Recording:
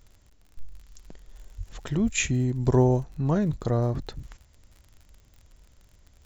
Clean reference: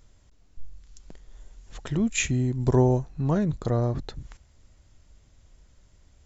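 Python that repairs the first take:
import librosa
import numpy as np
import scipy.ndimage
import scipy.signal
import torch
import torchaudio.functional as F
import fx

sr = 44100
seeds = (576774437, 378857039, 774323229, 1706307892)

y = fx.fix_declick_ar(x, sr, threshold=6.5)
y = fx.fix_deplosive(y, sr, at_s=(1.57, 2.03))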